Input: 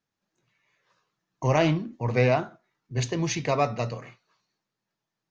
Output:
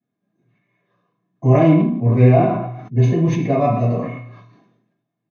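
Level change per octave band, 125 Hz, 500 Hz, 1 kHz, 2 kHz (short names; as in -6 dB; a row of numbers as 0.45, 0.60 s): +13.0, +8.0, +7.0, -0.5 dB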